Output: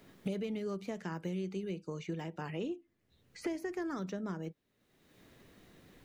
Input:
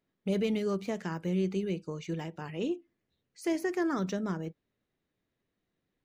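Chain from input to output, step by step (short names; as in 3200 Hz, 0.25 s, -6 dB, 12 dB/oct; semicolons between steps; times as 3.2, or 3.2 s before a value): three-band squash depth 100%; gain -7 dB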